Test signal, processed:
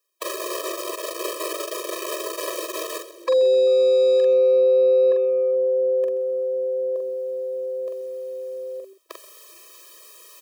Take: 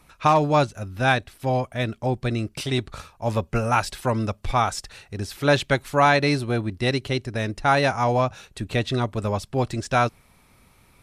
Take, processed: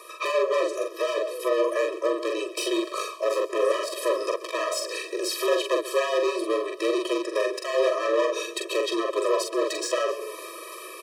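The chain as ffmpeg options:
ffmpeg -i in.wav -filter_complex "[0:a]acrossover=split=380|970[link_01][link_02][link_03];[link_01]acompressor=threshold=-31dB:ratio=4[link_04];[link_02]acompressor=threshold=-22dB:ratio=4[link_05];[link_03]acompressor=threshold=-37dB:ratio=4[link_06];[link_04][link_05][link_06]amix=inputs=3:normalize=0,lowshelf=frequency=69:gain=11.5,aeval=exprs='0.1*(abs(mod(val(0)/0.1+3,4)-2)-1)':channel_layout=same,areverse,acompressor=mode=upward:threshold=-34dB:ratio=2.5,areverse,asoftclip=type=tanh:threshold=-30.5dB,equalizer=frequency=250:width_type=o:width=0.33:gain=8,equalizer=frequency=800:width_type=o:width=0.33:gain=8,equalizer=frequency=2000:width_type=o:width=0.33:gain=-4,asplit=2[link_07][link_08];[link_08]asplit=5[link_09][link_10][link_11][link_12][link_13];[link_09]adelay=130,afreqshift=-130,volume=-17dB[link_14];[link_10]adelay=260,afreqshift=-260,volume=-22.2dB[link_15];[link_11]adelay=390,afreqshift=-390,volume=-27.4dB[link_16];[link_12]adelay=520,afreqshift=-520,volume=-32.6dB[link_17];[link_13]adelay=650,afreqshift=-650,volume=-37.8dB[link_18];[link_14][link_15][link_16][link_17][link_18]amix=inputs=5:normalize=0[link_19];[link_07][link_19]amix=inputs=2:normalize=0,afreqshift=-36,asplit=2[link_20][link_21];[link_21]adelay=44,volume=-4dB[link_22];[link_20][link_22]amix=inputs=2:normalize=0,alimiter=level_in=23dB:limit=-1dB:release=50:level=0:latency=1,afftfilt=real='re*eq(mod(floor(b*sr/1024/330),2),1)':imag='im*eq(mod(floor(b*sr/1024/330),2),1)':win_size=1024:overlap=0.75,volume=-9dB" out.wav

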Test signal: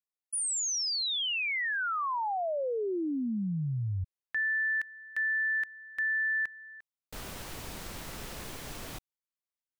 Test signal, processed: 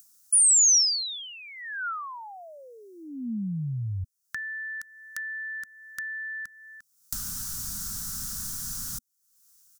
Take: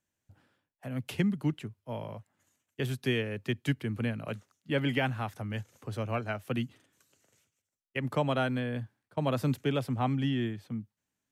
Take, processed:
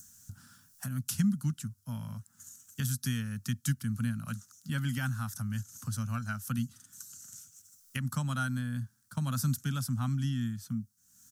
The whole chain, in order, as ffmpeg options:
ffmpeg -i in.wav -filter_complex "[0:a]firequalizer=gain_entry='entry(230,0);entry(360,-29);entry(1400,1);entry(2100,-15);entry(5700,12)':delay=0.05:min_phase=1,asplit=2[link_01][link_02];[link_02]acompressor=mode=upward:threshold=-32dB:ratio=2.5:attack=72:release=311:knee=2.83:detection=peak,volume=-3dB[link_03];[link_01][link_03]amix=inputs=2:normalize=0,adynamicequalizer=threshold=0.00398:dfrequency=2700:dqfactor=2.1:tfrequency=2700:tqfactor=2.1:attack=5:release=100:ratio=0.375:range=2.5:mode=cutabove:tftype=bell,volume=-3.5dB" out.wav

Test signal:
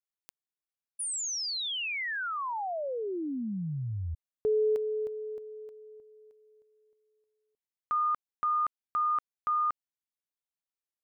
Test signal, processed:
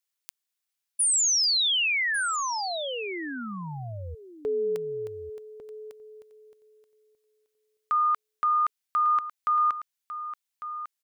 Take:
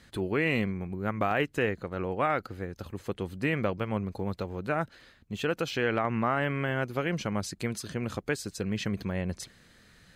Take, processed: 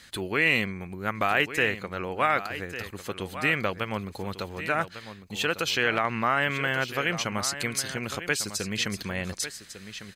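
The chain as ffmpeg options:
ffmpeg -i in.wav -filter_complex "[0:a]tiltshelf=frequency=1100:gain=-7,asplit=2[link_01][link_02];[link_02]aecho=0:1:1150:0.251[link_03];[link_01][link_03]amix=inputs=2:normalize=0,volume=4dB" out.wav

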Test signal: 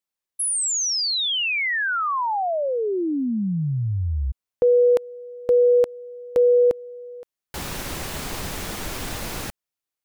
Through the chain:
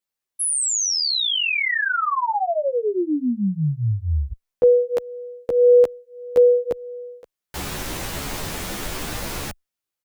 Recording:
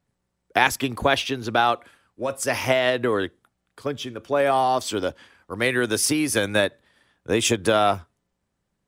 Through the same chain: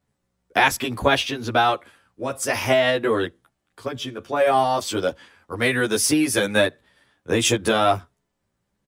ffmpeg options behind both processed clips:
ffmpeg -i in.wav -filter_complex "[0:a]asplit=2[link_01][link_02];[link_02]adelay=11.7,afreqshift=1.7[link_03];[link_01][link_03]amix=inputs=2:normalize=1,volume=4.5dB" out.wav

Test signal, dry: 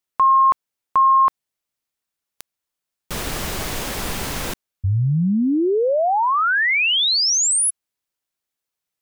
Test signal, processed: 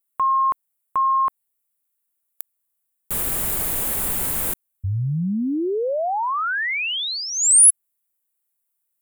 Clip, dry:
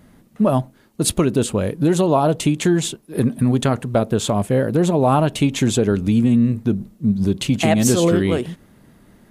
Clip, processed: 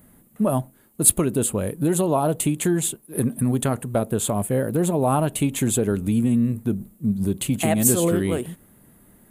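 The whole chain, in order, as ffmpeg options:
ffmpeg -i in.wav -af "aexciter=amount=13.3:drive=3.2:freq=7900,highshelf=frequency=4800:gain=-8.5,volume=-4.5dB" out.wav

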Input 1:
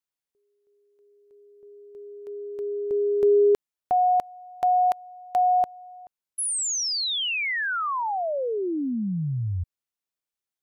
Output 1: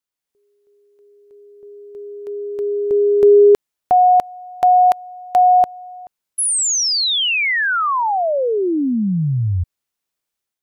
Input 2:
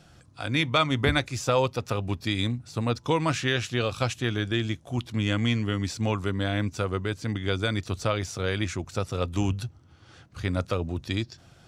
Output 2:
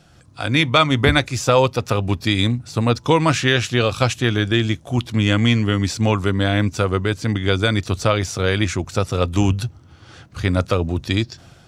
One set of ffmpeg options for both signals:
ffmpeg -i in.wav -af "dynaudnorm=framelen=110:gausssize=5:maxgain=6.5dB,volume=2.5dB" out.wav

